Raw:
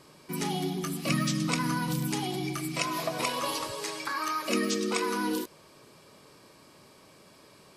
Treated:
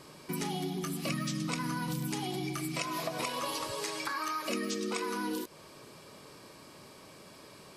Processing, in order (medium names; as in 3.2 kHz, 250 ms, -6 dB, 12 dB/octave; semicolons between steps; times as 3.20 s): compression 3:1, threshold -37 dBFS, peak gain reduction 11 dB; trim +3 dB